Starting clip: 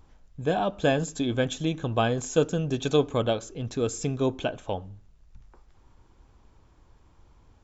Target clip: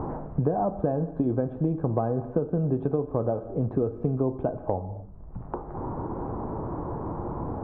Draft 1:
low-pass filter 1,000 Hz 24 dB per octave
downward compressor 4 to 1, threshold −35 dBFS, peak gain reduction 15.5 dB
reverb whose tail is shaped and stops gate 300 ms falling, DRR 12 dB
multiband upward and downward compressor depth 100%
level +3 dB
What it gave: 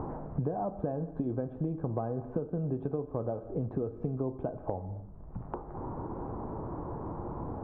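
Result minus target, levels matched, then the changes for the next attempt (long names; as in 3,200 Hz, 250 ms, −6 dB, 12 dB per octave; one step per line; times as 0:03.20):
downward compressor: peak gain reduction +8 dB
change: downward compressor 4 to 1, threshold −24.5 dBFS, peak gain reduction 8 dB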